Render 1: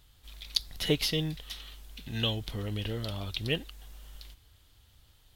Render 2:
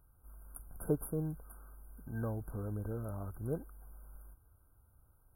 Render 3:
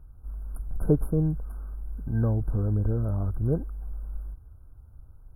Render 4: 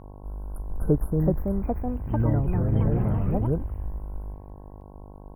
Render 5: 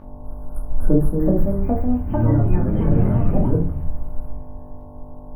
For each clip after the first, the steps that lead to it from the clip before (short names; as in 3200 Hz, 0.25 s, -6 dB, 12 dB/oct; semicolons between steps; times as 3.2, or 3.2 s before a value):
FFT band-reject 1600–9100 Hz; gain -4.5 dB
tilt -3 dB/oct; gain +5 dB
echoes that change speed 0.563 s, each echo +4 st, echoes 3; buzz 50 Hz, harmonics 22, -45 dBFS -4 dB/oct
shoebox room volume 290 m³, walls furnished, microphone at 2.5 m